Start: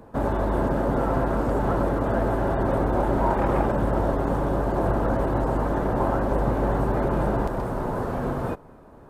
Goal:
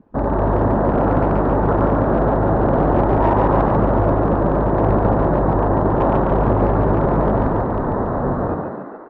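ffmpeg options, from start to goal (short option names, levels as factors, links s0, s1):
-filter_complex "[0:a]afwtdn=0.0282,asoftclip=type=hard:threshold=0.168,lowpass=3600,asplit=2[s0][s1];[s1]asplit=8[s2][s3][s4][s5][s6][s7][s8][s9];[s2]adelay=142,afreqshift=52,volume=0.631[s10];[s3]adelay=284,afreqshift=104,volume=0.372[s11];[s4]adelay=426,afreqshift=156,volume=0.219[s12];[s5]adelay=568,afreqshift=208,volume=0.13[s13];[s6]adelay=710,afreqshift=260,volume=0.0767[s14];[s7]adelay=852,afreqshift=312,volume=0.0452[s15];[s8]adelay=994,afreqshift=364,volume=0.0266[s16];[s9]adelay=1136,afreqshift=416,volume=0.0157[s17];[s10][s11][s12][s13][s14][s15][s16][s17]amix=inputs=8:normalize=0[s18];[s0][s18]amix=inputs=2:normalize=0,volume=1.78"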